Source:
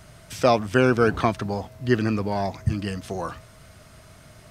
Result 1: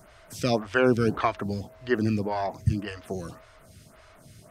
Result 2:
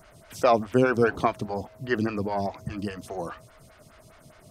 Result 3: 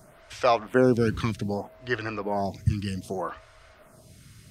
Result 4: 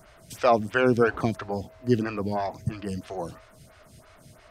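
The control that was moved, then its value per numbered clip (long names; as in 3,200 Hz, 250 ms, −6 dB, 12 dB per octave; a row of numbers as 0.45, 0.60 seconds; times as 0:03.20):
phaser with staggered stages, speed: 1.8, 4.9, 0.64, 3 Hertz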